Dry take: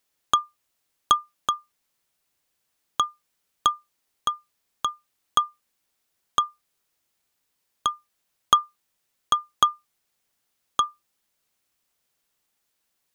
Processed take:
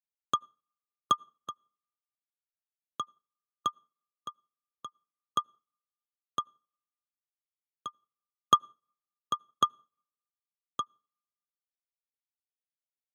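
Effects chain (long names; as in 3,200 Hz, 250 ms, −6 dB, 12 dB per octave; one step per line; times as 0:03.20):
high-pass filter 100 Hz 24 dB per octave
tilt shelving filter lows +5.5 dB, about 760 Hz
notch filter 950 Hz, Q 6.4
notch comb filter 760 Hz
tape delay 86 ms, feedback 57%, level −17 dB, low-pass 1,500 Hz
on a send at −12 dB: convolution reverb RT60 1.4 s, pre-delay 68 ms
on the sum: expander for the loud parts 2.5 to 1, over −47 dBFS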